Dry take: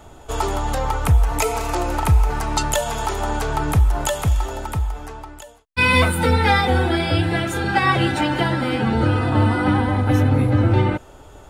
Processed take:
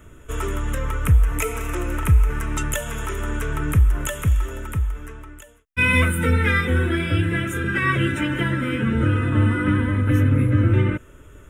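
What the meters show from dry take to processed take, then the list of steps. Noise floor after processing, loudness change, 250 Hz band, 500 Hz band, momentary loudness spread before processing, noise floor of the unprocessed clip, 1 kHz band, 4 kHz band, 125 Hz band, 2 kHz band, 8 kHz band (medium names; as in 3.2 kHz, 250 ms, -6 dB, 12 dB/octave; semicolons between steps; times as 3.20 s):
-46 dBFS, -1.5 dB, -1.5 dB, -5.5 dB, 9 LU, -44 dBFS, -9.5 dB, -7.0 dB, 0.0 dB, -0.5 dB, -4.0 dB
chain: static phaser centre 1.9 kHz, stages 4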